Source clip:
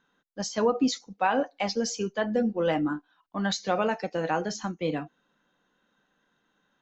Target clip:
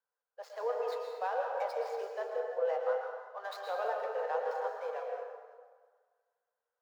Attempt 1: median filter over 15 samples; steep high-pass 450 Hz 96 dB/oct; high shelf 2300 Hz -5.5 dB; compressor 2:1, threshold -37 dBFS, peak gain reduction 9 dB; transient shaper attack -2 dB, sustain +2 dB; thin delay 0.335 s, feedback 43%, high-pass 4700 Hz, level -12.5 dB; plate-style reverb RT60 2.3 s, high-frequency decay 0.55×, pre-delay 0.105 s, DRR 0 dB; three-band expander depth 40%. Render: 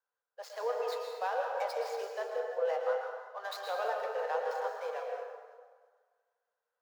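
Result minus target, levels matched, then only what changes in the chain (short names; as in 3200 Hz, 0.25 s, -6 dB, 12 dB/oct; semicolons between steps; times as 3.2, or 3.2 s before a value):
4000 Hz band +5.5 dB
change: high shelf 2300 Hz -14.5 dB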